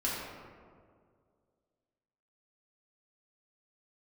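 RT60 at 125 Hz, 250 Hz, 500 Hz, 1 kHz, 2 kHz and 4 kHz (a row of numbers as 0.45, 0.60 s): 2.3, 2.3, 2.3, 1.8, 1.3, 0.85 s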